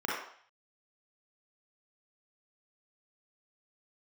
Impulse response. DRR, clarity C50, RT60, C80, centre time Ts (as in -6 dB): -5.5 dB, -1.0 dB, 0.55 s, 4.0 dB, 62 ms